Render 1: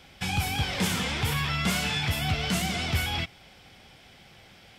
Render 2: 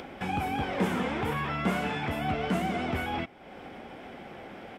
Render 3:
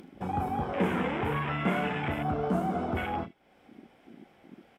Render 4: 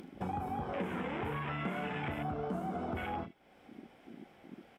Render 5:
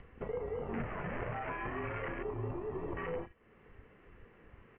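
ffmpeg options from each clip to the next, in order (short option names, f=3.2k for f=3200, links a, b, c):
-af "firequalizer=gain_entry='entry(120,0);entry(250,15);entry(4400,-10);entry(8800,-7)':delay=0.05:min_phase=1,acompressor=mode=upward:threshold=-25dB:ratio=2.5,volume=-8.5dB"
-af "aemphasis=mode=production:type=cd,aecho=1:1:34|77:0.376|0.224,afwtdn=0.0251"
-af "acompressor=threshold=-34dB:ratio=6"
-af "highpass=f=320:t=q:w=0.5412,highpass=f=320:t=q:w=1.307,lowpass=f=3k:t=q:w=0.5176,lowpass=f=3k:t=q:w=0.7071,lowpass=f=3k:t=q:w=1.932,afreqshift=-330,volume=1dB"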